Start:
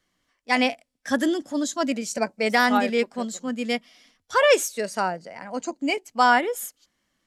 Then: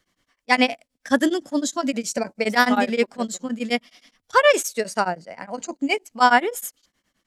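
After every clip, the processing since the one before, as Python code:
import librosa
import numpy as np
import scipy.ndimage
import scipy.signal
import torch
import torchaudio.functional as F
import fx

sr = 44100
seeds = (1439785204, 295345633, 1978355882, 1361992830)

y = x * np.abs(np.cos(np.pi * 9.6 * np.arange(len(x)) / sr))
y = y * librosa.db_to_amplitude(5.0)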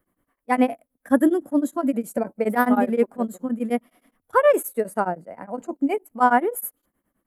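y = fx.curve_eq(x, sr, hz=(160.0, 300.0, 1300.0, 5600.0, 11000.0), db=(0, 3, -3, -28, 4))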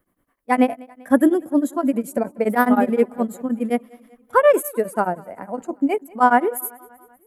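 y = fx.echo_feedback(x, sr, ms=194, feedback_pct=58, wet_db=-24.0)
y = y * librosa.db_to_amplitude(2.5)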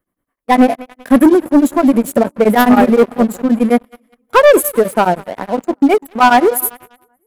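y = fx.leveller(x, sr, passes=3)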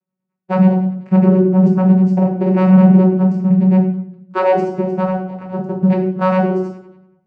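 y = fx.vocoder(x, sr, bands=8, carrier='saw', carrier_hz=186.0)
y = fx.room_shoebox(y, sr, seeds[0], volume_m3=130.0, walls='mixed', distance_m=1.0)
y = y * librosa.db_to_amplitude(-6.0)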